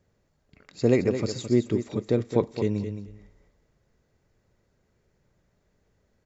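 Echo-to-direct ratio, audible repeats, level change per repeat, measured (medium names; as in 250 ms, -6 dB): -9.5 dB, 2, -16.0 dB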